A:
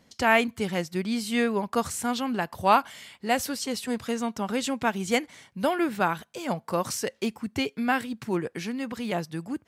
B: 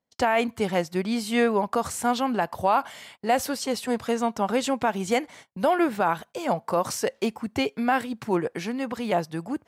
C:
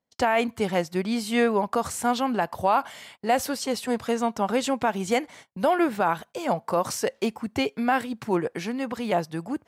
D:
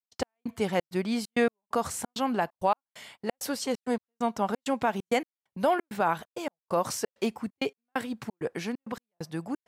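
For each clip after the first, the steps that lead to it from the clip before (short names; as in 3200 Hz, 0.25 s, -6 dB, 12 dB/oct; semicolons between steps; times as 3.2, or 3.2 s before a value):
gate -47 dBFS, range -27 dB; bell 720 Hz +8 dB 1.7 oct; limiter -12 dBFS, peak gain reduction 10 dB
nothing audible
step gate ".x..xxx.xxx" 132 bpm -60 dB; gain -2.5 dB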